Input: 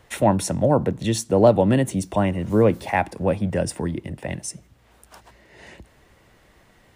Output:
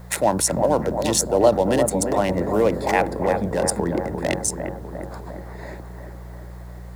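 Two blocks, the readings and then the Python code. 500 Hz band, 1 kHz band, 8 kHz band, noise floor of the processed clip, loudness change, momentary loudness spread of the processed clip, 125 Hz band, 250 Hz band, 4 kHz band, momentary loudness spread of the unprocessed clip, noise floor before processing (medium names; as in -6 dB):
+1.0 dB, +2.0 dB, +8.5 dB, -37 dBFS, +0.5 dB, 20 LU, -4.5 dB, -2.0 dB, +4.5 dB, 14 LU, -57 dBFS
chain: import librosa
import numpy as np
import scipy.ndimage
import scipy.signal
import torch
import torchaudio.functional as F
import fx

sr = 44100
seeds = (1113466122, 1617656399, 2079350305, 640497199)

p1 = fx.wiener(x, sr, points=15)
p2 = fx.bass_treble(p1, sr, bass_db=-14, treble_db=11)
p3 = fx.over_compress(p2, sr, threshold_db=-32.0, ratio=-1.0)
p4 = p2 + F.gain(torch.from_numpy(p3), -1.0).numpy()
p5 = fx.quant_dither(p4, sr, seeds[0], bits=10, dither='triangular')
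p6 = fx.dmg_buzz(p5, sr, base_hz=60.0, harmonics=3, level_db=-40.0, tilt_db=-3, odd_only=False)
p7 = p6 + fx.echo_bbd(p6, sr, ms=351, stages=4096, feedback_pct=63, wet_db=-6.5, dry=0)
y = fx.end_taper(p7, sr, db_per_s=300.0)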